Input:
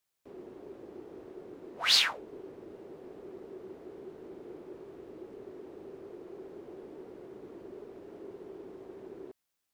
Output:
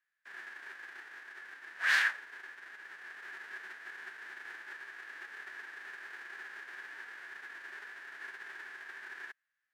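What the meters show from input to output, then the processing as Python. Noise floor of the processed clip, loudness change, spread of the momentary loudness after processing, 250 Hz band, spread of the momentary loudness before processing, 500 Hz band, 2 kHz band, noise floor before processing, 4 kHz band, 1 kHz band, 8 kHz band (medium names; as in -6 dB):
-85 dBFS, -10.0 dB, 14 LU, -21.5 dB, 16 LU, -18.5 dB, +6.5 dB, -83 dBFS, -13.5 dB, -1.5 dB, -10.5 dB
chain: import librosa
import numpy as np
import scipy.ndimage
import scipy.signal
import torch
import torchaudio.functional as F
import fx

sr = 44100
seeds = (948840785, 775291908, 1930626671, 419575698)

y = fx.envelope_flatten(x, sr, power=0.3)
y = fx.rider(y, sr, range_db=4, speed_s=2.0)
y = fx.bandpass_q(y, sr, hz=1700.0, q=9.8)
y = y * 10.0 ** (12.0 / 20.0)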